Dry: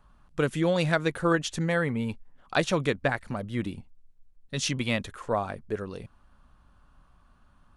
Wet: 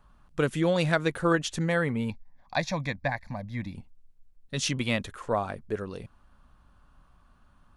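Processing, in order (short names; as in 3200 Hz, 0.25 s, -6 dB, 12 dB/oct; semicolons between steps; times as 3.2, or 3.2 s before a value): 2.1–3.75 fixed phaser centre 2000 Hz, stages 8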